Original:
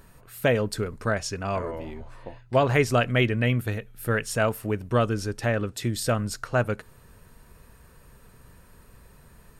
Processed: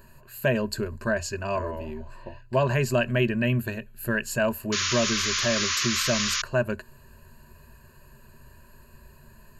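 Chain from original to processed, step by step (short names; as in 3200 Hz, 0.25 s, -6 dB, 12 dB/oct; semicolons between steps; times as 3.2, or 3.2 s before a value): ripple EQ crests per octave 1.4, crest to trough 14 dB; painted sound noise, 4.72–6.42, 1000–7100 Hz -24 dBFS; in parallel at +1.5 dB: limiter -14.5 dBFS, peak gain reduction 9 dB; on the sum: gain -9 dB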